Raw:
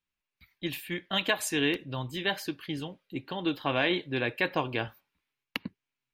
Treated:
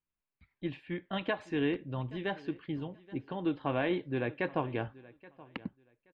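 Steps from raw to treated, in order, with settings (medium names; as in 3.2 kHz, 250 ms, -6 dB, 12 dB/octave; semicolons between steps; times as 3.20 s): tape spacing loss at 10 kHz 43 dB; feedback delay 826 ms, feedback 21%, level -21 dB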